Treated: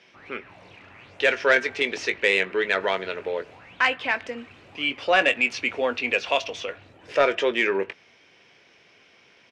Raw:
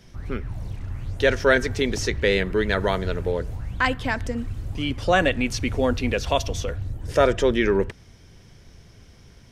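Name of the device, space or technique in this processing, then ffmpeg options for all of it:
intercom: -filter_complex "[0:a]highpass=440,lowpass=4000,equalizer=frequency=2500:width_type=o:width=0.58:gain=9.5,asoftclip=type=tanh:threshold=-7.5dB,asplit=2[link_01][link_02];[link_02]adelay=21,volume=-11.5dB[link_03];[link_01][link_03]amix=inputs=2:normalize=0"

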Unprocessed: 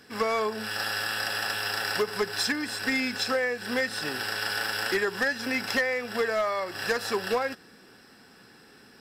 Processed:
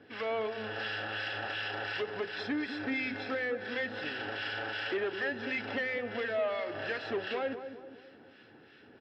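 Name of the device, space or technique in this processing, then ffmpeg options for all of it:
guitar amplifier with harmonic tremolo: -filter_complex "[0:a]acrossover=split=1300[link_01][link_02];[link_01]aeval=exprs='val(0)*(1-0.7/2+0.7/2*cos(2*PI*2.8*n/s))':channel_layout=same[link_03];[link_02]aeval=exprs='val(0)*(1-0.7/2-0.7/2*cos(2*PI*2.8*n/s))':channel_layout=same[link_04];[link_03][link_04]amix=inputs=2:normalize=0,asoftclip=type=tanh:threshold=-29dB,highpass=86,equalizer=frequency=93:width_type=q:width=4:gain=6,equalizer=frequency=190:width_type=q:width=4:gain=-8,equalizer=frequency=310:width_type=q:width=4:gain=5,equalizer=frequency=590:width_type=q:width=4:gain=4,equalizer=frequency=1100:width_type=q:width=4:gain=-7,equalizer=frequency=3100:width_type=q:width=4:gain=4,lowpass=frequency=3500:width=0.5412,lowpass=frequency=3500:width=1.3066,asettb=1/sr,asplit=3[link_05][link_06][link_07];[link_05]atrim=end=2.364[link_08];[link_06]atrim=start=2.36:end=3.76,asetpts=PTS-STARTPTS,afade=type=in:duration=0.004:curve=qsin,afade=type=out:start_time=1.396:duration=0.004:curve=qsin,bandreject=frequency=2900:width=10[link_09];[link_07]atrim=start=3.756[link_10];[link_08][link_09]acrossfade=duration=0.004:curve1=hsin:curve2=qsin[link_11];[link_11][link_10]acrossfade=duration=0.004:curve1=qsin:curve2=hsin,asplit=2[link_12][link_13];[link_13]adelay=206,lowpass=frequency=1000:poles=1,volume=-8dB,asplit=2[link_14][link_15];[link_15]adelay=206,lowpass=frequency=1000:poles=1,volume=0.53,asplit=2[link_16][link_17];[link_17]adelay=206,lowpass=frequency=1000:poles=1,volume=0.53,asplit=2[link_18][link_19];[link_19]adelay=206,lowpass=frequency=1000:poles=1,volume=0.53,asplit=2[link_20][link_21];[link_21]adelay=206,lowpass=frequency=1000:poles=1,volume=0.53,asplit=2[link_22][link_23];[link_23]adelay=206,lowpass=frequency=1000:poles=1,volume=0.53[link_24];[link_12][link_14][link_16][link_18][link_20][link_22][link_24]amix=inputs=7:normalize=0"

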